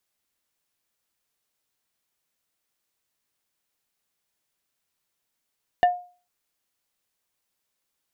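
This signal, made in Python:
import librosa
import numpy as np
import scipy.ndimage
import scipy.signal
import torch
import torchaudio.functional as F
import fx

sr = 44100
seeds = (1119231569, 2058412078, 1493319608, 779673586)

y = fx.strike_wood(sr, length_s=0.45, level_db=-11.5, body='plate', hz=714.0, decay_s=0.38, tilt_db=9, modes=5)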